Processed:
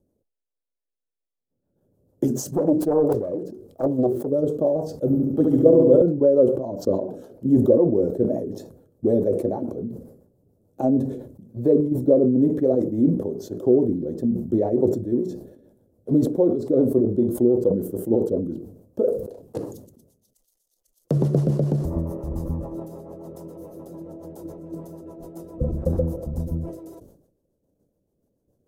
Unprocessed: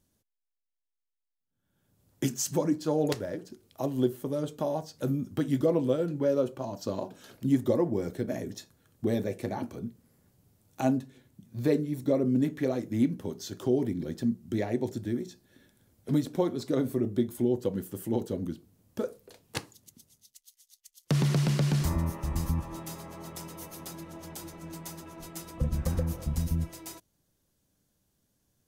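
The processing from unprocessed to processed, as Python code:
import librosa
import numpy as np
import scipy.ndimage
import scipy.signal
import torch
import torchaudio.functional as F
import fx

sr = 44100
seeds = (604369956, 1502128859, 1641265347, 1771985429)

p1 = fx.self_delay(x, sr, depth_ms=0.79, at=(2.56, 4.28))
p2 = fx.curve_eq(p1, sr, hz=(120.0, 200.0, 520.0, 2200.0, 14000.0), db=(0, 2, 11, -22, -9))
p3 = fx.level_steps(p2, sr, step_db=12)
p4 = p2 + F.gain(torch.from_numpy(p3), 2.5).numpy()
p5 = fx.rotary(p4, sr, hz=7.0)
p6 = fx.room_flutter(p5, sr, wall_m=11.9, rt60_s=1.3, at=(5.06, 6.02))
p7 = fx.sustainer(p6, sr, db_per_s=77.0)
y = F.gain(torch.from_numpy(p7), -1.5).numpy()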